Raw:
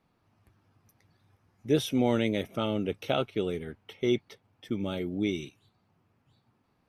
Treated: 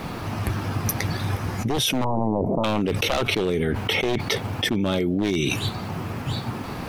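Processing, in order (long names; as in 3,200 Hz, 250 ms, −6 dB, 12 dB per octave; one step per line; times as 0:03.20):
wavefolder on the positive side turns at −25.5 dBFS
0:02.04–0:02.64: elliptic low-pass filter 970 Hz, stop band 40 dB
envelope flattener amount 100%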